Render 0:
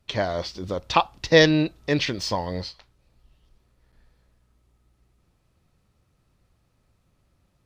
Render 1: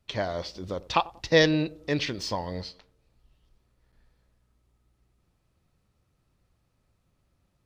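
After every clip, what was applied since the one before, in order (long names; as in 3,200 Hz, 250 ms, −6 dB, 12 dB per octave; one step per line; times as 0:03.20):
feedback echo with a band-pass in the loop 93 ms, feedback 51%, band-pass 370 Hz, level −18 dB
level −4.5 dB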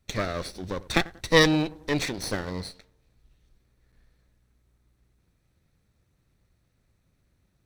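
lower of the sound and its delayed copy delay 0.5 ms
level +2.5 dB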